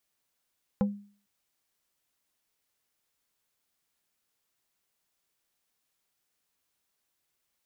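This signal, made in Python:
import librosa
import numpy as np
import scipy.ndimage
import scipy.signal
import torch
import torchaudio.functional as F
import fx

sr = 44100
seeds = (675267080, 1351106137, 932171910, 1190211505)

y = fx.strike_wood(sr, length_s=0.45, level_db=-20, body='plate', hz=203.0, decay_s=0.44, tilt_db=6, modes=5)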